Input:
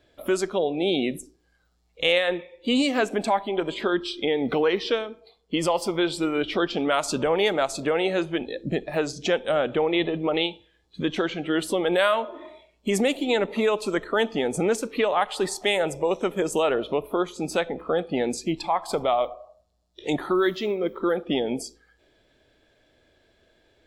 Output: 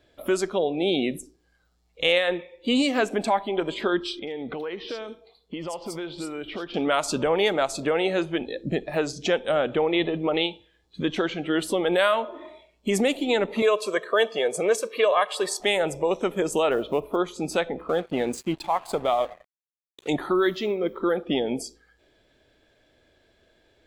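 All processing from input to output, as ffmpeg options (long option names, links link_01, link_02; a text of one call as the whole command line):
ffmpeg -i in.wav -filter_complex "[0:a]asettb=1/sr,asplit=3[link_01][link_02][link_03];[link_01]atrim=end=4.194[link_04];[link_02]atrim=start=4.19:end=6.74,asetpts=PTS-STARTPTS,afade=type=in:duration=0.004:curve=qsin,afade=type=out:start_time=2.546:duration=0.004:curve=qsin,acompressor=threshold=-32dB:ratio=3:attack=3.2:release=140:knee=1:detection=peak,acrossover=split=4000[link_05][link_06];[link_06]adelay=80[link_07];[link_05][link_07]amix=inputs=2:normalize=0,atrim=end_sample=112455[link_08];[link_03]atrim=start=6.736[link_09];[link_04][link_08]acrossfade=duration=0.004:curve1=hsin:curve2=qsin[link_10];[link_10][link_09]acrossfade=duration=0.004:curve1=qsin:curve2=hsin,asettb=1/sr,asplit=3[link_11][link_12][link_13];[link_11]atrim=end=13.624[link_14];[link_12]atrim=start=13.62:end=15.6,asetpts=PTS-STARTPTS,afade=type=in:duration=0.004:curve=qsin,afade=type=out:start_time=1.976:duration=0.004:curve=qsin,highpass=310,aecho=1:1:1.8:0.74,atrim=end_sample=87318[link_15];[link_13]atrim=start=15.596[link_16];[link_14][link_15]acrossfade=duration=0.004:curve1=hsin:curve2=qsin[link_17];[link_17][link_16]acrossfade=duration=0.004:curve1=qsin:curve2=hsin,asettb=1/sr,asplit=3[link_18][link_19][link_20];[link_18]atrim=end=16.714[link_21];[link_19]atrim=start=16.71:end=17.16,asetpts=PTS-STARTPTS,afade=type=in:duration=0.004:curve=qsin,afade=type=out:start_time=0.446:duration=0.004:curve=qsin,aemphasis=mode=reproduction:type=cd,acrusher=bits=9:mode=log:mix=0:aa=0.000001[link_22];[link_20]atrim=start=17.156[link_23];[link_21][link_22]acrossfade=duration=0.004:curve1=hsin:curve2=qsin[link_24];[link_24][link_23]acrossfade=duration=0.004:curve1=qsin:curve2=hsin,asettb=1/sr,asplit=3[link_25][link_26][link_27];[link_25]atrim=end=17.894[link_28];[link_26]atrim=start=17.89:end=20.08,asetpts=PTS-STARTPTS,afade=type=in:duration=0.004:curve=qsin,afade=type=out:start_time=2.186:duration=0.004:curve=qsin,aeval=exprs='sgn(val(0))*max(abs(val(0))-0.0075,0)':channel_layout=same,equalizer=frequency=5300:width_type=o:width=0.34:gain=-5.5[link_29];[link_27]atrim=start=20.076[link_30];[link_28][link_29]acrossfade=duration=0.004:curve1=hsin:curve2=qsin[link_31];[link_31][link_30]acrossfade=duration=0.004:curve1=qsin:curve2=hsin" out.wav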